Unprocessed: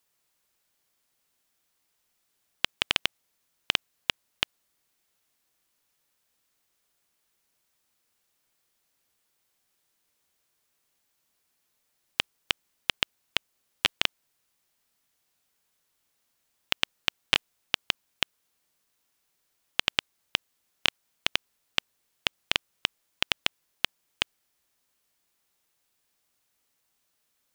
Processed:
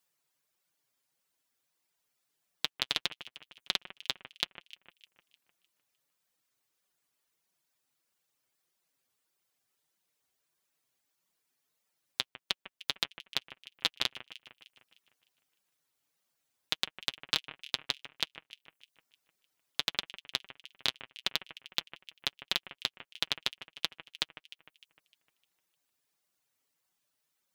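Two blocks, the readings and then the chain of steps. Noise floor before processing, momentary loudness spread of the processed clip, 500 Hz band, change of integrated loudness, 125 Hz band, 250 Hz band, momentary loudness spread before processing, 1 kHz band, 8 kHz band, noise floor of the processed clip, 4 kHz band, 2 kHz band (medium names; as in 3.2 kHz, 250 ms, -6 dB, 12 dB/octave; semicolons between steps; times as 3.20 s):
-76 dBFS, 19 LU, -6.0 dB, -5.0 dB, -6.5 dB, -6.0 dB, 6 LU, -6.0 dB, -3.5 dB, under -85 dBFS, -4.5 dB, -8.5 dB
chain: reverb removal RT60 0.84 s; high-pass 62 Hz 6 dB/octave; in parallel at -11 dB: hard clipper -9.5 dBFS, distortion -9 dB; on the sum: flange 1.6 Hz, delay 5.1 ms, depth 3 ms, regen +30%; on a send: echo whose repeats swap between lows and highs 152 ms, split 2.4 kHz, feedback 60%, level -13 dB; on the sum: loudspeaker Doppler distortion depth 0.25 ms; trim -2 dB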